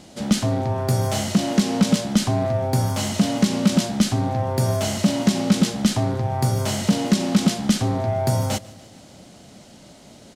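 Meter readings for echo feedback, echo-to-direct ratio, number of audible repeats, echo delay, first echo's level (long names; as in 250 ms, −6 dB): 59%, −21.0 dB, 3, 147 ms, −23.0 dB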